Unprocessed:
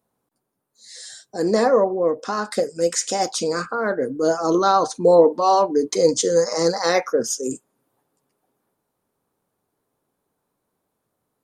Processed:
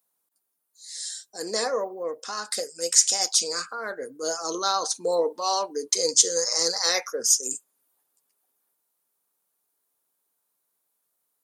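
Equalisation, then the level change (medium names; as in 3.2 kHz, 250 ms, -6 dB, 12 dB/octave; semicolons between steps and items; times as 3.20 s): dynamic bell 450 Hz, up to +4 dB, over -25 dBFS, Q 2.8; tilt EQ +4.5 dB/octave; dynamic bell 5.1 kHz, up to +4 dB, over -28 dBFS, Q 0.9; -9.0 dB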